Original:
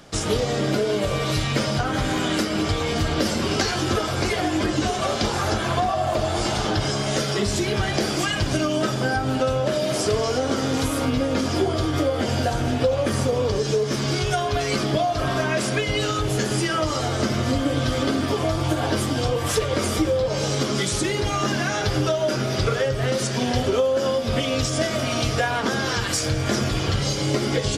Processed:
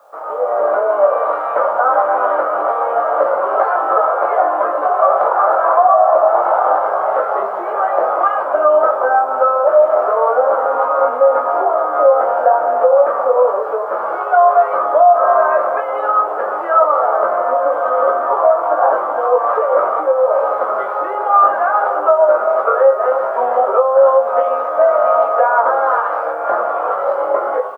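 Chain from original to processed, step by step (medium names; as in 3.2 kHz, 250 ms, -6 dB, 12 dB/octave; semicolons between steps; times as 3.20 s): tracing distortion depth 0.074 ms; Chebyshev band-pass 540–1300 Hz, order 3; level rider gain up to 10 dB; word length cut 12-bit, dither triangular; doubling 20 ms -3.5 dB; loudness maximiser +6 dB; trim -1 dB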